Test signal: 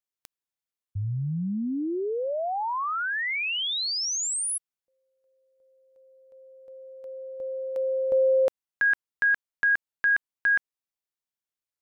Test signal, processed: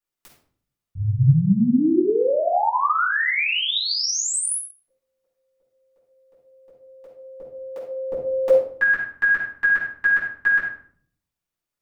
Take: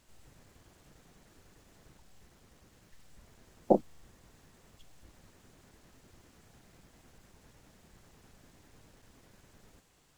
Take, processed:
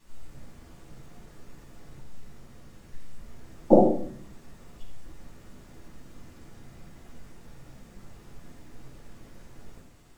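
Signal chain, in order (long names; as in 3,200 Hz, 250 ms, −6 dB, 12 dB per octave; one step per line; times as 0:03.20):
rectangular room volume 730 cubic metres, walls furnished, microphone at 9.6 metres
level −4.5 dB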